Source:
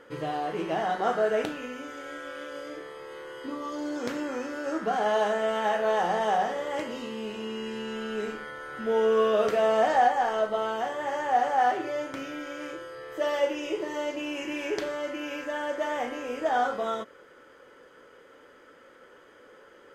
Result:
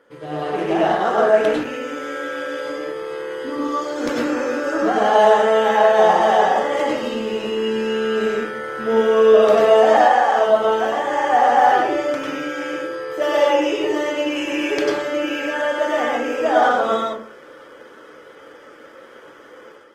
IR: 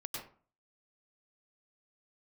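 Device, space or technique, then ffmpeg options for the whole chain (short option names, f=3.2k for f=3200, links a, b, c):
far-field microphone of a smart speaker: -filter_complex "[0:a]asettb=1/sr,asplit=3[a][b][c];[a]atrim=end=9.904[d];[b]atrim=start=9.9:end=10.39,asetpts=PTS-STARTPTS,afade=t=in:d=0.004:c=qsin,afade=t=out:st=0.486:d=0.004:c=qsin,lowshelf=f=150:g=-12[e];[c]atrim=start=10.386[f];[d][e]acrossfade=d=0.004:c1=hsin:c2=qsin[g];[g][f]acrossfade=d=0.004:c1=qsin:c2=hsin[h];[1:a]atrim=start_sample=2205[i];[h][i]afir=irnorm=-1:irlink=0,highpass=f=150:p=1,dynaudnorm=f=270:g=3:m=10dB,volume=1.5dB" -ar 48000 -c:a libopus -b:a 20k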